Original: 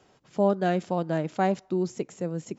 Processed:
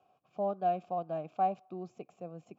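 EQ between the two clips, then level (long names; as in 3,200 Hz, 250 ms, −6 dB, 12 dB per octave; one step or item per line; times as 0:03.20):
formant filter a
bass and treble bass +15 dB, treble +2 dB
0.0 dB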